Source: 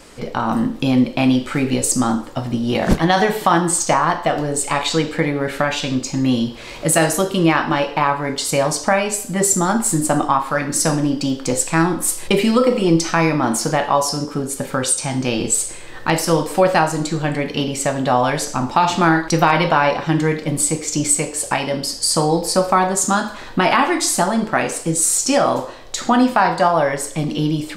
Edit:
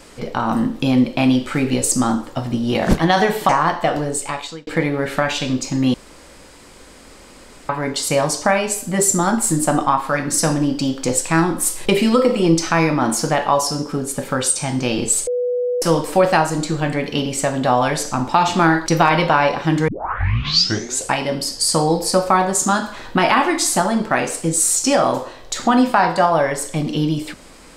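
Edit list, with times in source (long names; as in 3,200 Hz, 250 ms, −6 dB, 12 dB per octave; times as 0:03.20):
0:03.49–0:03.91: remove
0:04.42–0:05.09: fade out
0:06.36–0:08.11: fill with room tone
0:15.69–0:16.24: beep over 492 Hz −17 dBFS
0:20.30: tape start 1.23 s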